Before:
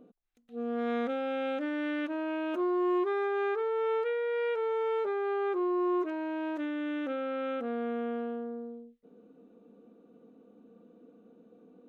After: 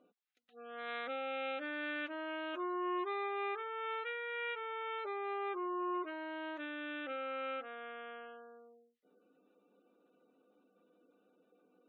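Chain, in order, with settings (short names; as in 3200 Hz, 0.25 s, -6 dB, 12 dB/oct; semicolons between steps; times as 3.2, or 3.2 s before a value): differentiator; spectral gate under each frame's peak -25 dB strong; air absorption 320 m; notch comb 230 Hz; gain +15.5 dB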